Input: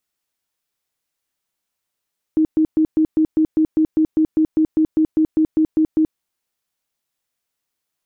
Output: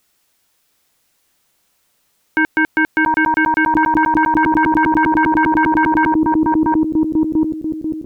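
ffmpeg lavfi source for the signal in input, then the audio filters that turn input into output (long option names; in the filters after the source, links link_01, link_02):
-f lavfi -i "aevalsrc='0.266*sin(2*PI*314*mod(t,0.2))*lt(mod(t,0.2),25/314)':duration=3.8:sample_rate=44100"
-filter_complex "[0:a]asplit=2[link_01][link_02];[link_02]adelay=691,lowpass=frequency=860:poles=1,volume=-4dB,asplit=2[link_03][link_04];[link_04]adelay=691,lowpass=frequency=860:poles=1,volume=0.43,asplit=2[link_05][link_06];[link_06]adelay=691,lowpass=frequency=860:poles=1,volume=0.43,asplit=2[link_07][link_08];[link_08]adelay=691,lowpass=frequency=860:poles=1,volume=0.43,asplit=2[link_09][link_10];[link_10]adelay=691,lowpass=frequency=860:poles=1,volume=0.43[link_11];[link_01][link_03][link_05][link_07][link_09][link_11]amix=inputs=6:normalize=0,aeval=exprs='0.316*sin(PI/2*4.47*val(0)/0.316)':channel_layout=same"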